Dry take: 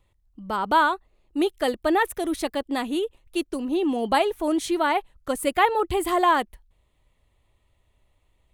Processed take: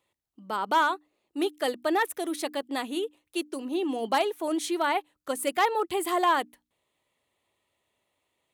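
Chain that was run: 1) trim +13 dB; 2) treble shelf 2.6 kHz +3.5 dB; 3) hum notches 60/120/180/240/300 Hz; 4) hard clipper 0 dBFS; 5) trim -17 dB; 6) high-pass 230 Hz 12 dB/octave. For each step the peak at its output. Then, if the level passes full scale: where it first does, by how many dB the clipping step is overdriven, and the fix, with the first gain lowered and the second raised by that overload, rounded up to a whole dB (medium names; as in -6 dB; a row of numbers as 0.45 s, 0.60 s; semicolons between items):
+4.5 dBFS, +5.5 dBFS, +5.5 dBFS, 0.0 dBFS, -17.0 dBFS, -13.0 dBFS; step 1, 5.5 dB; step 1 +7 dB, step 5 -11 dB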